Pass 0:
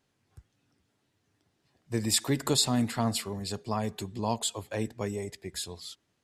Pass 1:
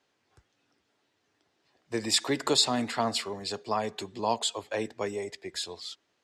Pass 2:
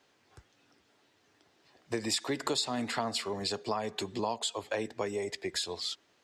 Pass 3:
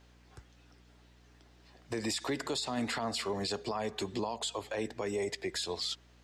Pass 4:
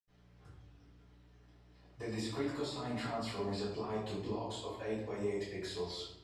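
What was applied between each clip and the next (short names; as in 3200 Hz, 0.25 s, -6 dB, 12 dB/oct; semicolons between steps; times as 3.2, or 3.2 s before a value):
three-band isolator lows -15 dB, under 300 Hz, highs -18 dB, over 7400 Hz; gain +4 dB
compressor 4:1, threshold -37 dBFS, peak gain reduction 15.5 dB; gain +6 dB
limiter -27 dBFS, peak gain reduction 11 dB; hum 60 Hz, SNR 24 dB; gain +2 dB
reverb RT60 0.90 s, pre-delay 76 ms; gain +7 dB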